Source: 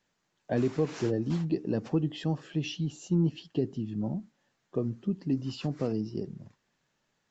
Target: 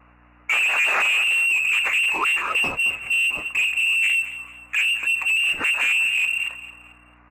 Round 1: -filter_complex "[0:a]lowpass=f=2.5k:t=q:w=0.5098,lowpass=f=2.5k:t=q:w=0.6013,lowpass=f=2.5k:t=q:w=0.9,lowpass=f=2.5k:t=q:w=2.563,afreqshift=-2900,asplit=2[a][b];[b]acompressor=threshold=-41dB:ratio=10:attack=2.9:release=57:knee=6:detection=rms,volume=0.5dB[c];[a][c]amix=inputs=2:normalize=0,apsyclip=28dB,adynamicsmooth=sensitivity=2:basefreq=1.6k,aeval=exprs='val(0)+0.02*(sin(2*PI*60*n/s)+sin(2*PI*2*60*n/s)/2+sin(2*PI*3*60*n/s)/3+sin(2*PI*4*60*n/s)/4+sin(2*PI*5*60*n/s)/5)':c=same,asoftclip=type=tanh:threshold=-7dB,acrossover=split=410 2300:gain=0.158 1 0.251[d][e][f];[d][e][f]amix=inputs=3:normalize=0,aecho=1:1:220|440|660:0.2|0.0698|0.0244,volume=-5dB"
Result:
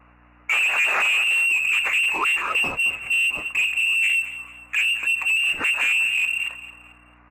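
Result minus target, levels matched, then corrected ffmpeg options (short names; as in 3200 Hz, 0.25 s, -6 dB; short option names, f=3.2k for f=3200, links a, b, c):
compressor: peak gain reduction +10 dB
-filter_complex "[0:a]lowpass=f=2.5k:t=q:w=0.5098,lowpass=f=2.5k:t=q:w=0.6013,lowpass=f=2.5k:t=q:w=0.9,lowpass=f=2.5k:t=q:w=2.563,afreqshift=-2900,asplit=2[a][b];[b]acompressor=threshold=-30dB:ratio=10:attack=2.9:release=57:knee=6:detection=rms,volume=0.5dB[c];[a][c]amix=inputs=2:normalize=0,apsyclip=28dB,adynamicsmooth=sensitivity=2:basefreq=1.6k,aeval=exprs='val(0)+0.02*(sin(2*PI*60*n/s)+sin(2*PI*2*60*n/s)/2+sin(2*PI*3*60*n/s)/3+sin(2*PI*4*60*n/s)/4+sin(2*PI*5*60*n/s)/5)':c=same,asoftclip=type=tanh:threshold=-7dB,acrossover=split=410 2300:gain=0.158 1 0.251[d][e][f];[d][e][f]amix=inputs=3:normalize=0,aecho=1:1:220|440|660:0.2|0.0698|0.0244,volume=-5dB"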